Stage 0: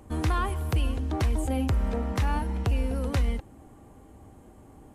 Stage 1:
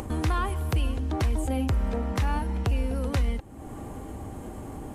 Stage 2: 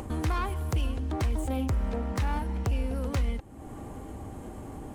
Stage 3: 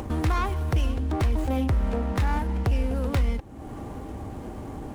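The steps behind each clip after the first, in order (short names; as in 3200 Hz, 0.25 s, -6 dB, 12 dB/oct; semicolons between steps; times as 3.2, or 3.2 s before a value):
upward compressor, threshold -25 dBFS
self-modulated delay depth 0.1 ms; gain -2.5 dB
running maximum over 5 samples; gain +4.5 dB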